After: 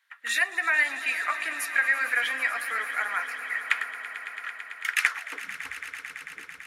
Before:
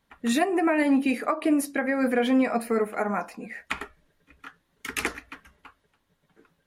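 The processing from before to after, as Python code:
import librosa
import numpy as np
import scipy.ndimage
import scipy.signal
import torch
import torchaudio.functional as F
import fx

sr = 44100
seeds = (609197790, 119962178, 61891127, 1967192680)

y = fx.filter_sweep_highpass(x, sr, from_hz=1700.0, to_hz=65.0, start_s=5.07, end_s=5.72, q=2.9)
y = fx.echo_swell(y, sr, ms=111, loudest=5, wet_db=-16)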